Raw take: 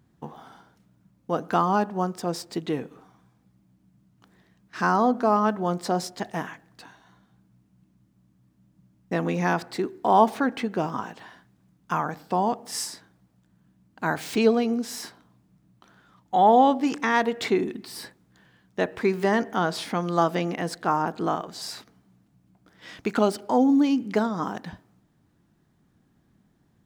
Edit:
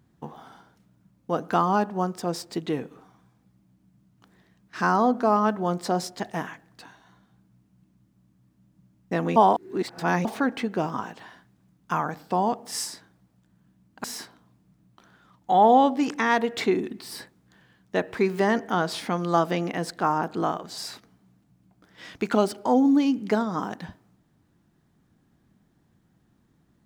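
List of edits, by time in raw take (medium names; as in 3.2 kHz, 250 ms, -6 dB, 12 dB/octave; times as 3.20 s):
9.36–10.25 s: reverse
14.04–14.88 s: delete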